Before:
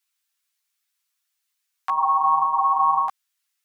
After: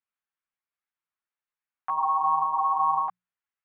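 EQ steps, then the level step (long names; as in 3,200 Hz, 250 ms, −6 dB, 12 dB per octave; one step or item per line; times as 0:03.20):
low-pass filter 1,200 Hz 6 dB per octave
high-frequency loss of the air 480 metres
mains-hum notches 60/120/180 Hz
0.0 dB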